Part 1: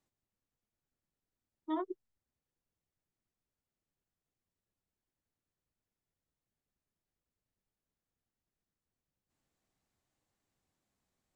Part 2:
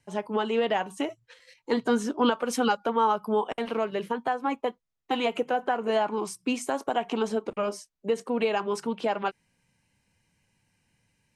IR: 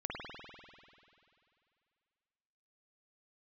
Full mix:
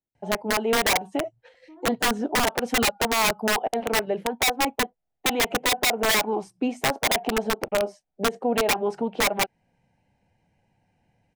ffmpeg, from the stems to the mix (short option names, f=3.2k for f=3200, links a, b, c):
-filter_complex "[0:a]lowpass=1.6k,alimiter=level_in=8.5dB:limit=-24dB:level=0:latency=1:release=93,volume=-8.5dB,volume=-7.5dB[a];[1:a]acontrast=45,lowpass=f=1.2k:p=1,equalizer=f=750:t=o:w=0.75:g=14,adelay=150,volume=-2dB[b];[a][b]amix=inputs=2:normalize=0,equalizer=f=1.1k:w=2.5:g=-10.5,aeval=exprs='(mod(4.22*val(0)+1,2)-1)/4.22':c=same,alimiter=limit=-16dB:level=0:latency=1:release=292"